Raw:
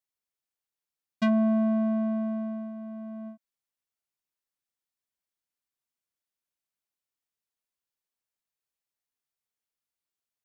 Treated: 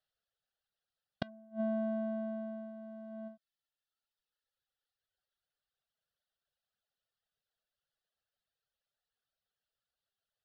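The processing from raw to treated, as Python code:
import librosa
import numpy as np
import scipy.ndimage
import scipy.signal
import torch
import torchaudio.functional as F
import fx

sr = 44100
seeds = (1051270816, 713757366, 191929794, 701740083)

y = fx.dereverb_blind(x, sr, rt60_s=1.8)
y = fx.fixed_phaser(y, sr, hz=1500.0, stages=8)
y = fx.gate_flip(y, sr, shuts_db=-28.0, range_db=-33)
y = fx.air_absorb(y, sr, metres=82.0)
y = y * librosa.db_to_amplitude(9.5)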